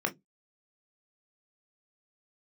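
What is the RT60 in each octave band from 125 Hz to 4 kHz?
0.30, 0.25, 0.20, 0.10, 0.10, 0.10 s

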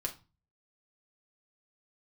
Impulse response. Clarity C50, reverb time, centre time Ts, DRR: 14.0 dB, 0.30 s, 10 ms, 0.0 dB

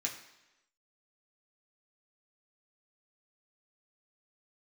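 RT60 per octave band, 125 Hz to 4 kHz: 0.85, 0.95, 0.95, 1.0, 1.0, 0.95 s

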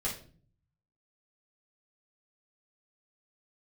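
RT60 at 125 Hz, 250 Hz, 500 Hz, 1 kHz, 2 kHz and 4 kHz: 1.1, 0.75, 0.50, 0.35, 0.35, 0.35 s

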